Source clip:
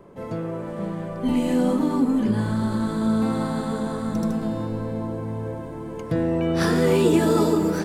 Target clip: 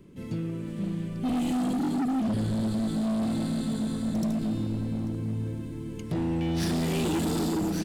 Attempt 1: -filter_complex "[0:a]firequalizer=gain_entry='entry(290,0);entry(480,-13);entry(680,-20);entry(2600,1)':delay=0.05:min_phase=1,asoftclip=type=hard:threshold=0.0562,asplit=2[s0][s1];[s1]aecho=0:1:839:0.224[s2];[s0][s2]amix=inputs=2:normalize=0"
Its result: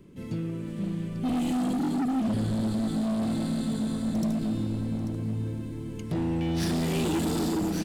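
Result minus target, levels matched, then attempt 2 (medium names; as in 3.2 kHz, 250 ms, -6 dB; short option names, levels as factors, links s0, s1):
echo-to-direct +6.5 dB
-filter_complex "[0:a]firequalizer=gain_entry='entry(290,0);entry(480,-13);entry(680,-20);entry(2600,1)':delay=0.05:min_phase=1,asoftclip=type=hard:threshold=0.0562,asplit=2[s0][s1];[s1]aecho=0:1:839:0.106[s2];[s0][s2]amix=inputs=2:normalize=0"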